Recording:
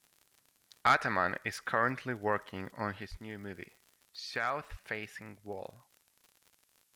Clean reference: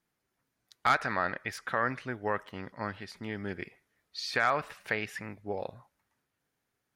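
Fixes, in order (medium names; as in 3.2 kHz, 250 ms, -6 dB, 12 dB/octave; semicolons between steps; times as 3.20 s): de-click; de-plosive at 3.10/4.70 s; expander -64 dBFS, range -21 dB; gain correction +6.5 dB, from 3.07 s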